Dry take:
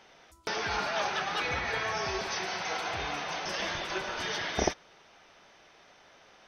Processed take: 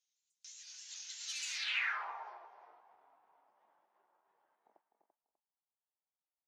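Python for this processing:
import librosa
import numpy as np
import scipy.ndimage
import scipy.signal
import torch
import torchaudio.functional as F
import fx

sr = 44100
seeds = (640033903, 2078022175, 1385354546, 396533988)

p1 = fx.pitch_trill(x, sr, semitones=2.0, every_ms=166)
p2 = fx.doppler_pass(p1, sr, speed_mps=19, closest_m=1.3, pass_at_s=1.49)
p3 = p2 + fx.echo_single(p2, sr, ms=252, db=-8.0, dry=0)
p4 = 10.0 ** (-29.0 / 20.0) * np.tanh(p3 / 10.0 ** (-29.0 / 20.0))
p5 = p4 + 10.0 ** (-8.0 / 20.0) * np.pad(p4, (int(339 * sr / 1000.0), 0))[:len(p4)]
p6 = fx.leveller(p5, sr, passes=1)
p7 = fx.filter_sweep_bandpass(p6, sr, from_hz=3500.0, to_hz=200.0, start_s=1.33, end_s=2.98, q=0.98)
p8 = np.clip(p7, -10.0 ** (-40.0 / 20.0), 10.0 ** (-40.0 / 20.0))
p9 = p7 + F.gain(torch.from_numpy(p8), -10.0).numpy()
p10 = fx.filter_sweep_bandpass(p9, sr, from_hz=6900.0, to_hz=910.0, start_s=1.5, end_s=2.06, q=3.2)
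p11 = fx.tilt_eq(p10, sr, slope=3.5)
y = F.gain(torch.from_numpy(p11), 5.5).numpy()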